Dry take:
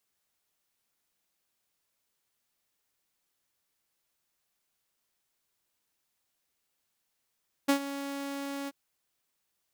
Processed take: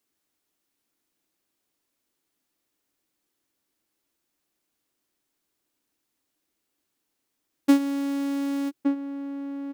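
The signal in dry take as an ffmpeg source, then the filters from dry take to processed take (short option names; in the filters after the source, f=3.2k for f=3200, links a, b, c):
-f lavfi -i "aevalsrc='0.133*(2*mod(279*t,1)-1)':d=1.034:s=44100,afade=t=in:d=0.015,afade=t=out:st=0.015:d=0.09:silence=0.188,afade=t=out:st=1:d=0.034"
-filter_complex "[0:a]equalizer=f=300:t=o:w=0.72:g=13,asplit=2[a][b];[b]adelay=1166,volume=-6dB,highshelf=f=4k:g=-26.2[c];[a][c]amix=inputs=2:normalize=0"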